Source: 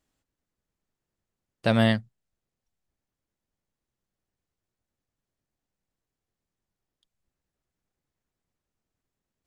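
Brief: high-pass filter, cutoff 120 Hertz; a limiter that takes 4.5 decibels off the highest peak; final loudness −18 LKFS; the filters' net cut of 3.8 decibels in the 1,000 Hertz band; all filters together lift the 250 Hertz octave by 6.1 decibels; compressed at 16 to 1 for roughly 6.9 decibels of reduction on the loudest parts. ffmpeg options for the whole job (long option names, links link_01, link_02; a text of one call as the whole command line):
ffmpeg -i in.wav -af "highpass=120,equalizer=frequency=250:width_type=o:gain=7.5,equalizer=frequency=1000:width_type=o:gain=-7.5,acompressor=threshold=-19dB:ratio=16,volume=10dB,alimiter=limit=-4dB:level=0:latency=1" out.wav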